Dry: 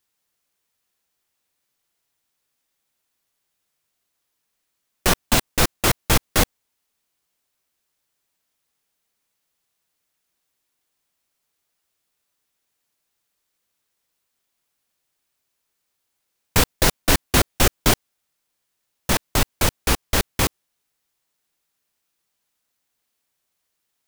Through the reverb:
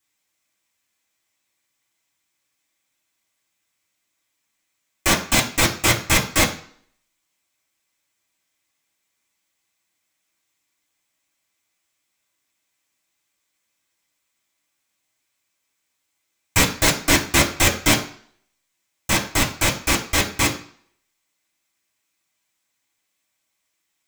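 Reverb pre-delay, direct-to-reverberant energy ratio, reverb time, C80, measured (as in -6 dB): 3 ms, -5.0 dB, 0.50 s, 15.5 dB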